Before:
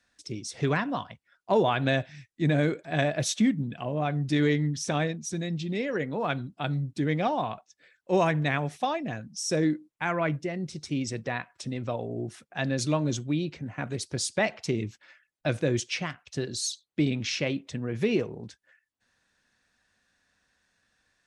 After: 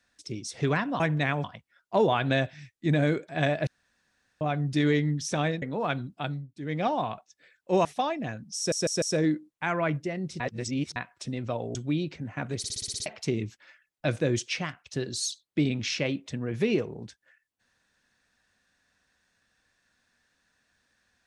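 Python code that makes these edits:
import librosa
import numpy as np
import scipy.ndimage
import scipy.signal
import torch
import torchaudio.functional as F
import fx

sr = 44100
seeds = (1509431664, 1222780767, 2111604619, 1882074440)

y = fx.edit(x, sr, fx.room_tone_fill(start_s=3.23, length_s=0.74),
    fx.cut(start_s=5.18, length_s=0.84),
    fx.fade_down_up(start_s=6.59, length_s=0.67, db=-15.0, fade_s=0.29),
    fx.move(start_s=8.25, length_s=0.44, to_s=1.0),
    fx.stutter(start_s=9.41, slice_s=0.15, count=4),
    fx.reverse_span(start_s=10.79, length_s=0.56),
    fx.cut(start_s=12.14, length_s=1.02),
    fx.stutter_over(start_s=13.99, slice_s=0.06, count=8), tone=tone)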